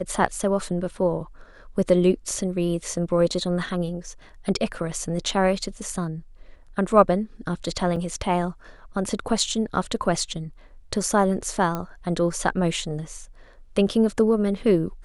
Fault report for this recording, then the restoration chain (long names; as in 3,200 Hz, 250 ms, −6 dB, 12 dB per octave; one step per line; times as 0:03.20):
0:07.96: drop-out 4.3 ms
0:11.75: click −14 dBFS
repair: click removal
repair the gap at 0:07.96, 4.3 ms